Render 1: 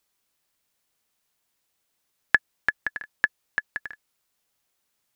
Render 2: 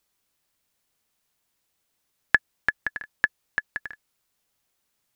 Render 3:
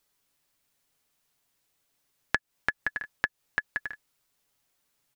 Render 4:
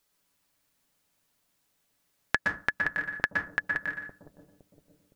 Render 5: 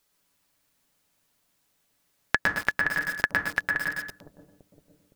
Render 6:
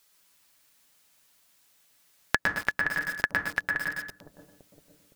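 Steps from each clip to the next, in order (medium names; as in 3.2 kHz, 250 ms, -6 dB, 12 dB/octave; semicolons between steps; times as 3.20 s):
bass shelf 230 Hz +4 dB
comb 7.1 ms, depth 36%; compression 12:1, threshold -23 dBFS, peak gain reduction 12 dB
bucket-brigade echo 513 ms, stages 2048, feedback 43%, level -7.5 dB; on a send at -3 dB: reverberation RT60 0.35 s, pre-delay 115 ms
bit-crushed delay 108 ms, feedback 35%, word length 6-bit, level -3.5 dB; trim +2.5 dB
tape noise reduction on one side only encoder only; trim -2 dB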